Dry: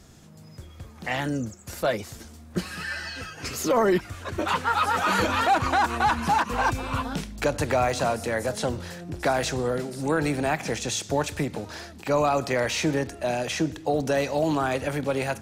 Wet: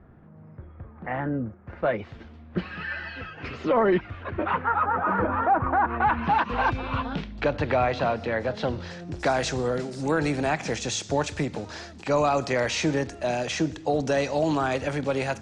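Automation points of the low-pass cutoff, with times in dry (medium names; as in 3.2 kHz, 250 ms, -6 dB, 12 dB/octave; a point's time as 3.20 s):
low-pass 24 dB/octave
1.61 s 1.7 kHz
2.10 s 3.1 kHz
4.12 s 3.1 kHz
4.98 s 1.5 kHz
5.73 s 1.5 kHz
6.45 s 3.8 kHz
8.53 s 3.8 kHz
9.22 s 7.5 kHz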